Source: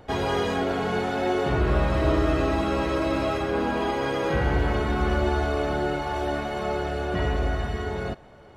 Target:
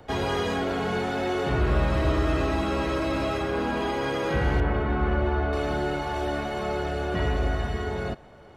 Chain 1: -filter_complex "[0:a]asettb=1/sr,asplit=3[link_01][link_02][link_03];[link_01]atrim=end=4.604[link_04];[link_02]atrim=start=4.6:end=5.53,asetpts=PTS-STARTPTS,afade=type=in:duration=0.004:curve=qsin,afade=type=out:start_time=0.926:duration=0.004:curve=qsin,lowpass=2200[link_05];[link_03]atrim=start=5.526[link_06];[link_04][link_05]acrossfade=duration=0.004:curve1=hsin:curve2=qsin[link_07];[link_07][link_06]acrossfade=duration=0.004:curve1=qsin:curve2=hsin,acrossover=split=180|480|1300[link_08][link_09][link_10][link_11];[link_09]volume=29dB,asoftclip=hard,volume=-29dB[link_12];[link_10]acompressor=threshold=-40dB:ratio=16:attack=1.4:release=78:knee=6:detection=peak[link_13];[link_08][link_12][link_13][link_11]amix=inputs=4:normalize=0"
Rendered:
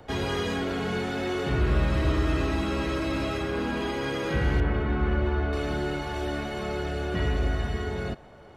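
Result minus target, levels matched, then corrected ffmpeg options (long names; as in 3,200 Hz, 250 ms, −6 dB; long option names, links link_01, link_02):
downward compressor: peak gain reduction +11 dB
-filter_complex "[0:a]asettb=1/sr,asplit=3[link_01][link_02][link_03];[link_01]atrim=end=4.604[link_04];[link_02]atrim=start=4.6:end=5.53,asetpts=PTS-STARTPTS,afade=type=in:duration=0.004:curve=qsin,afade=type=out:start_time=0.926:duration=0.004:curve=qsin,lowpass=2200[link_05];[link_03]atrim=start=5.526[link_06];[link_04][link_05]acrossfade=duration=0.004:curve1=hsin:curve2=qsin[link_07];[link_07][link_06]acrossfade=duration=0.004:curve1=qsin:curve2=hsin,acrossover=split=180|480|1300[link_08][link_09][link_10][link_11];[link_09]volume=29dB,asoftclip=hard,volume=-29dB[link_12];[link_10]acompressor=threshold=-28dB:ratio=16:attack=1.4:release=78:knee=6:detection=peak[link_13];[link_08][link_12][link_13][link_11]amix=inputs=4:normalize=0"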